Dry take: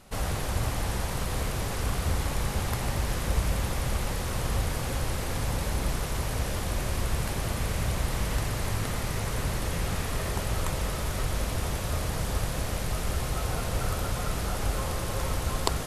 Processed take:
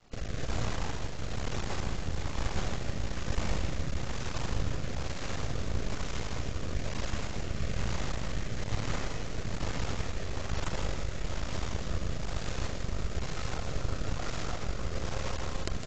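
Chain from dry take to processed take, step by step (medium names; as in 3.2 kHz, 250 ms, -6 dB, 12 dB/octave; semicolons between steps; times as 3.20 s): half-wave rectifier; rotary cabinet horn 1.1 Hz; on a send: feedback delay 159 ms, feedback 58%, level -8.5 dB; on the sum: AAC 32 kbps 16 kHz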